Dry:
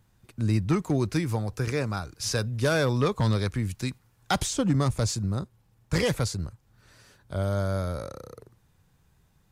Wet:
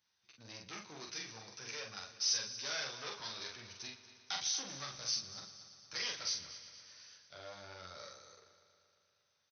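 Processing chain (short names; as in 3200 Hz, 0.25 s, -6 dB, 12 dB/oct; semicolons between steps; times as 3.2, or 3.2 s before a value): chorus voices 2, 0.52 Hz, delay 12 ms, depth 3.5 ms; in parallel at -2 dB: level quantiser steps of 21 dB; on the sum: tube stage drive 26 dB, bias 0.4; brick-wall FIR low-pass 6300 Hz; differentiator; doubler 44 ms -3.5 dB; on a send: multi-head echo 0.117 s, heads first and second, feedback 64%, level -17 dB; on the sum: gain +4.5 dB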